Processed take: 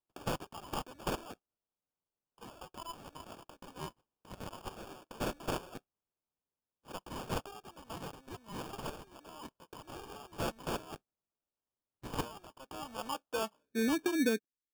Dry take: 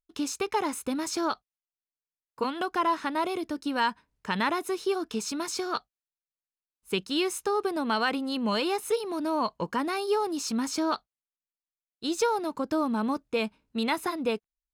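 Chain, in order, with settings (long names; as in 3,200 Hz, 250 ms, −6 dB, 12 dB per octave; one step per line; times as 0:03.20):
band-pass filter sweep 7,800 Hz → 290 Hz, 0:12.48–0:13.90
decimation without filtering 22×
level +4.5 dB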